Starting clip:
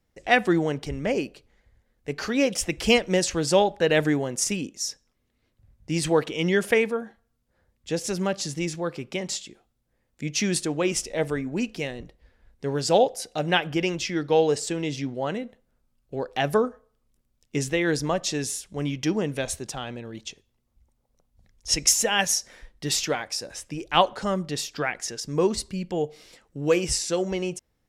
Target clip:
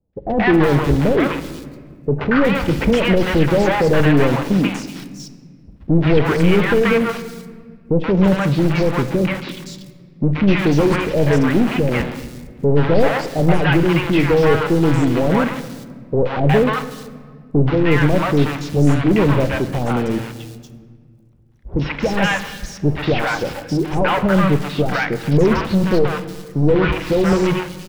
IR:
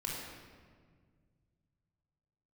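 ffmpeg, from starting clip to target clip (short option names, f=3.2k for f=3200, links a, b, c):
-filter_complex "[0:a]afwtdn=0.0158,bass=f=250:g=9,treble=f=4k:g=2,asplit=2[a][b];[b]highpass=f=720:p=1,volume=31dB,asoftclip=type=tanh:threshold=-2.5dB[c];[a][c]amix=inputs=2:normalize=0,lowpass=f=1.6k:p=1,volume=-6dB,lowshelf=f=110:g=8,asoftclip=type=tanh:threshold=-3dB,acrusher=bits=2:mode=log:mix=0:aa=0.000001,acrossover=split=3800[d][e];[e]acompressor=threshold=-38dB:ratio=4:attack=1:release=60[f];[d][f]amix=inputs=2:normalize=0,acrossover=split=710|4200[g][h][i];[h]adelay=130[j];[i]adelay=370[k];[g][j][k]amix=inputs=3:normalize=0,asplit=2[l][m];[1:a]atrim=start_sample=2205[n];[m][n]afir=irnorm=-1:irlink=0,volume=-12dB[o];[l][o]amix=inputs=2:normalize=0,volume=-3.5dB"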